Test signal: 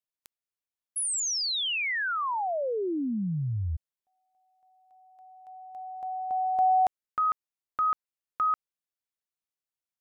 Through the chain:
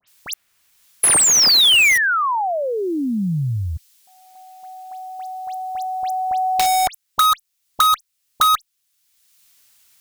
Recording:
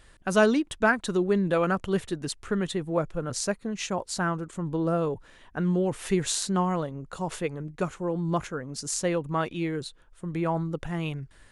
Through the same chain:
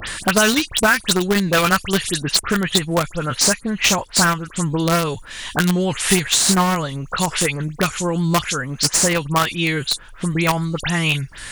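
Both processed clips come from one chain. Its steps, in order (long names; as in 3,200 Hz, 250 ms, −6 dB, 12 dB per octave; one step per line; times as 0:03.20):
guitar amp tone stack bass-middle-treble 5-5-5
all-pass dispersion highs, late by 79 ms, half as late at 2,900 Hz
in parallel at −5.5 dB: bit-depth reduction 6 bits, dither none
on the sum: boost into a limiter +24.5 dB
multiband upward and downward compressor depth 70%
level −1.5 dB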